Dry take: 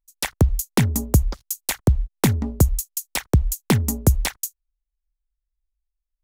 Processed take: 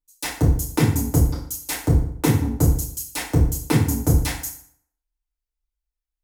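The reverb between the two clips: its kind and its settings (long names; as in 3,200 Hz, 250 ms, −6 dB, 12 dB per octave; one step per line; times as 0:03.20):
feedback delay network reverb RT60 0.62 s, low-frequency decay 1.05×, high-frequency decay 0.75×, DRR −8.5 dB
level −9.5 dB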